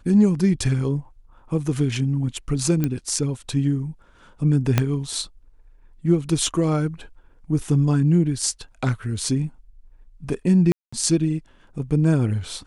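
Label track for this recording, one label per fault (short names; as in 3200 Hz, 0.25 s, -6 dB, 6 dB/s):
2.840000	2.840000	pop -10 dBFS
4.780000	4.780000	pop -4 dBFS
10.720000	10.930000	gap 0.205 s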